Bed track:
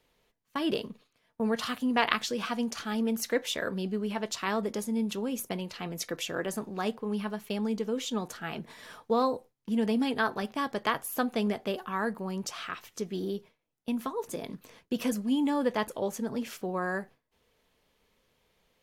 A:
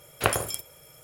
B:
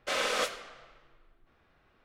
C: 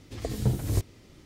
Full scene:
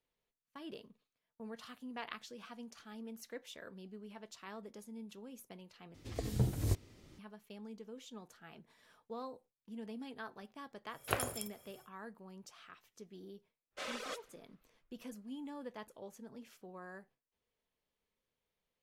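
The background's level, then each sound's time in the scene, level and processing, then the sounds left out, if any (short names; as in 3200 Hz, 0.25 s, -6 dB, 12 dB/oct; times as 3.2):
bed track -18.5 dB
5.94 replace with C -6.5 dB
10.87 add A -11 dB, fades 0.10 s
13.7 add B -11.5 dB, fades 0.10 s + reverb removal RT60 1.6 s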